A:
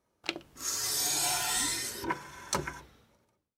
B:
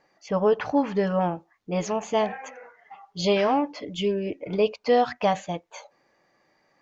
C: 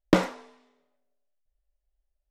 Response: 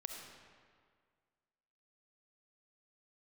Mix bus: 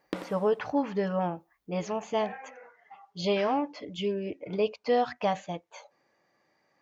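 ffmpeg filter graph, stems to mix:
-filter_complex "[1:a]volume=0.562[s0];[2:a]acompressor=threshold=0.0501:ratio=4,aexciter=amount=4.2:drive=6.5:freq=8500,volume=0.531,asplit=2[s1][s2];[s2]volume=0.266,aecho=0:1:89:1[s3];[s0][s1][s3]amix=inputs=3:normalize=0,highpass=58,acrossover=split=6200[s4][s5];[s5]acompressor=threshold=0.00112:ratio=4:attack=1:release=60[s6];[s4][s6]amix=inputs=2:normalize=0"

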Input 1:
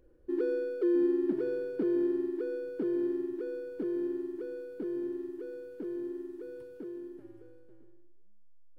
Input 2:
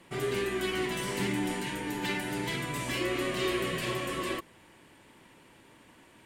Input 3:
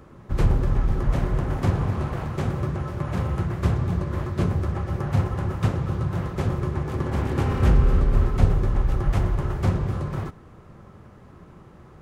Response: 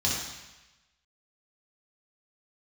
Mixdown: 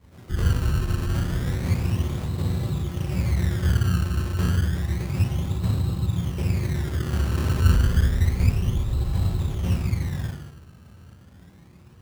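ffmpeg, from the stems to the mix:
-filter_complex "[0:a]volume=0.2[s0];[1:a]volume=0.282,asplit=2[s1][s2];[s2]volume=0.168[s3];[2:a]volume=0.596,asplit=2[s4][s5];[s5]volume=0.224[s6];[s1][s4]amix=inputs=2:normalize=0,afwtdn=0.0355,acompressor=threshold=0.0398:ratio=6,volume=1[s7];[3:a]atrim=start_sample=2205[s8];[s3][s6]amix=inputs=2:normalize=0[s9];[s9][s8]afir=irnorm=-1:irlink=0[s10];[s0][s7][s10]amix=inputs=3:normalize=0,acrusher=samples=21:mix=1:aa=0.000001:lfo=1:lforange=21:lforate=0.3"

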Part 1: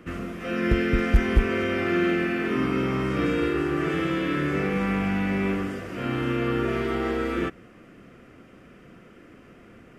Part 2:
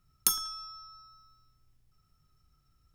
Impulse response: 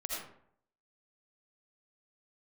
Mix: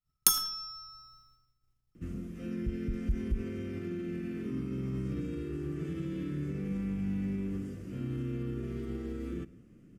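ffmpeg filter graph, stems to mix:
-filter_complex "[0:a]alimiter=limit=0.106:level=0:latency=1:release=71,firequalizer=gain_entry='entry(150,0);entry(710,-22);entry(6500,-7)':delay=0.05:min_phase=1,adelay=1950,volume=0.708,asplit=2[s0][s1];[s1]volume=0.0841[s2];[1:a]agate=range=0.0224:threshold=0.00158:ratio=3:detection=peak,volume=1.12,asplit=2[s3][s4];[s4]volume=0.251[s5];[2:a]atrim=start_sample=2205[s6];[s2][s5]amix=inputs=2:normalize=0[s7];[s7][s6]afir=irnorm=-1:irlink=0[s8];[s0][s3][s8]amix=inputs=3:normalize=0"

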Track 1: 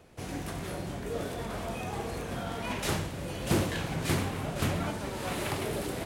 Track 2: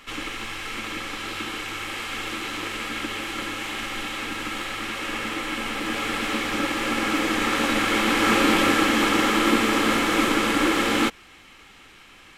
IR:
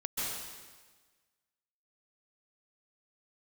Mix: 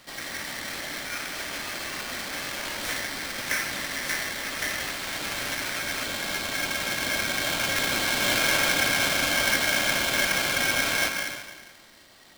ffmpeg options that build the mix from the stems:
-filter_complex "[0:a]volume=0.794[s0];[1:a]lowpass=f=3900:p=1,volume=0.422,asplit=2[s1][s2];[s2]volume=0.501[s3];[2:a]atrim=start_sample=2205[s4];[s3][s4]afir=irnorm=-1:irlink=0[s5];[s0][s1][s5]amix=inputs=3:normalize=0,aeval=exprs='val(0)*sgn(sin(2*PI*1900*n/s))':c=same"

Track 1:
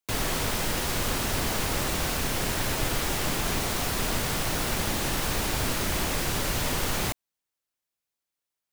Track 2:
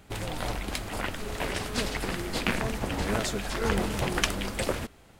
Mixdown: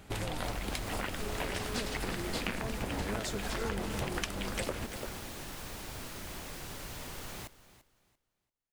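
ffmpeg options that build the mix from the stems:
-filter_complex "[0:a]adelay=350,volume=0.168,asplit=2[s0][s1];[s1]volume=0.15[s2];[1:a]volume=1.12,asplit=2[s3][s4];[s4]volume=0.178[s5];[s2][s5]amix=inputs=2:normalize=0,aecho=0:1:341|682|1023|1364:1|0.24|0.0576|0.0138[s6];[s0][s3][s6]amix=inputs=3:normalize=0,acompressor=threshold=0.0251:ratio=5"

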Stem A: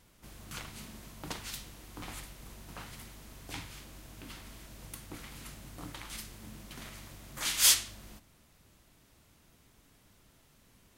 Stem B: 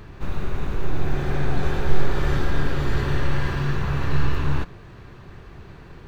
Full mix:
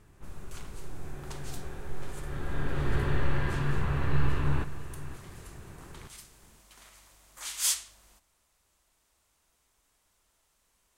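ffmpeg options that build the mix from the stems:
-filter_complex "[0:a]equalizer=f=125:t=o:w=1:g=-12,equalizer=f=250:t=o:w=1:g=-8,equalizer=f=1000:t=o:w=1:g=4,equalizer=f=8000:t=o:w=1:g=7,volume=0.355[s0];[1:a]lowpass=3300,volume=0.562,afade=t=in:st=2.26:d=0.67:silence=0.251189,asplit=2[s1][s2];[s2]volume=0.188,aecho=0:1:522:1[s3];[s0][s1][s3]amix=inputs=3:normalize=0"

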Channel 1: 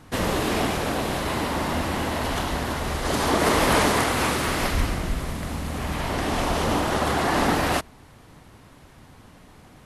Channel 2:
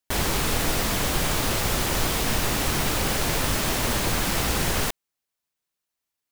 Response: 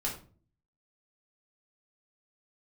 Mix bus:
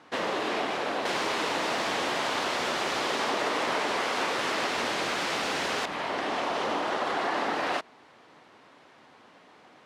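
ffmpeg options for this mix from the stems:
-filter_complex "[0:a]volume=0.891[s0];[1:a]adelay=950,volume=1.06[s1];[s0][s1]amix=inputs=2:normalize=0,highpass=380,lowpass=4500,acompressor=threshold=0.0562:ratio=6"

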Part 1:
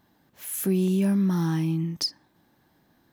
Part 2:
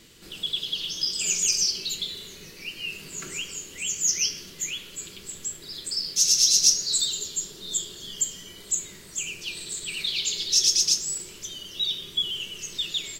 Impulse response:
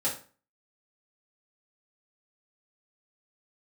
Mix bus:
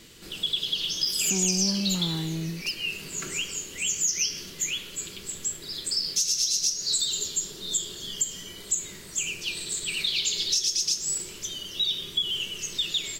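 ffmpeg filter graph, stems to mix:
-filter_complex "[0:a]asoftclip=type=tanh:threshold=0.0944,adelay=650,volume=0.631[s0];[1:a]acompressor=threshold=0.0631:ratio=12,volume=1.33[s1];[s0][s1]amix=inputs=2:normalize=0"

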